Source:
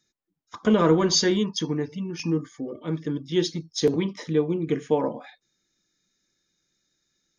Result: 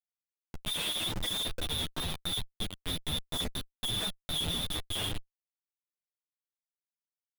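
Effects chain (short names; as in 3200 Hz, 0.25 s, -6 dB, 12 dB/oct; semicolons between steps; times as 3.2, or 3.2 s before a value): inverted band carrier 3800 Hz; Schmitt trigger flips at -27 dBFS; chorus voices 2, 0.78 Hz, delay 11 ms, depth 1.9 ms; gain -3.5 dB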